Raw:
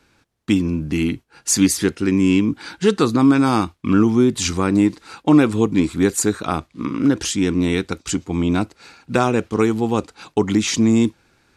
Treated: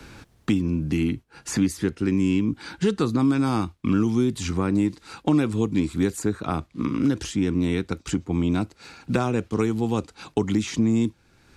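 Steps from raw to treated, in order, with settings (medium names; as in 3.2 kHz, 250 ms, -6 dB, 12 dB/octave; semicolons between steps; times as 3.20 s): bass shelf 210 Hz +8 dB; three bands compressed up and down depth 70%; trim -9 dB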